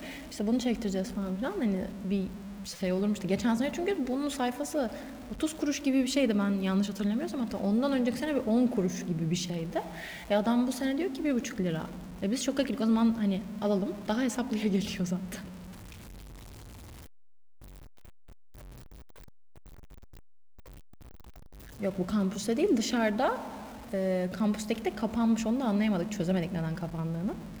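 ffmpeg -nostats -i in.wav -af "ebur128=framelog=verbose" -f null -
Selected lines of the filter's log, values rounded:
Integrated loudness:
  I:         -30.3 LUFS
  Threshold: -41.4 LUFS
Loudness range:
  LRA:         7.7 LU
  Threshold: -51.4 LUFS
  LRA low:   -36.9 LUFS
  LRA high:  -29.2 LUFS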